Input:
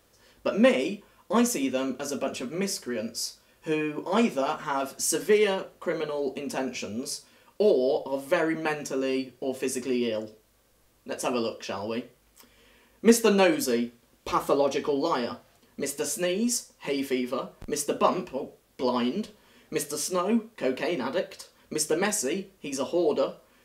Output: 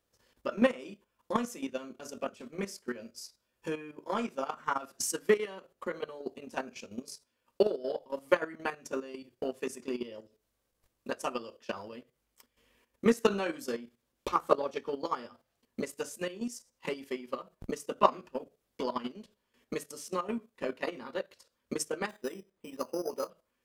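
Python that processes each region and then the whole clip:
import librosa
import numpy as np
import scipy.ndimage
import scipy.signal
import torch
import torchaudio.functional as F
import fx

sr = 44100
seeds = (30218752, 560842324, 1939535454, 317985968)

y = fx.chain(x, sr, fx.peak_eq(hz=60.0, db=-9.0, octaves=2.0),
    fx.resample_bad(factor=8, down='filtered', up='hold'), at=(22.09, 23.3))
y = fx.transient(y, sr, attack_db=12, sustain_db=-4)
y = fx.level_steps(y, sr, step_db=12)
y = fx.dynamic_eq(y, sr, hz=1300.0, q=2.0, threshold_db=-44.0, ratio=4.0, max_db=7)
y = F.gain(torch.from_numpy(y), -8.5).numpy()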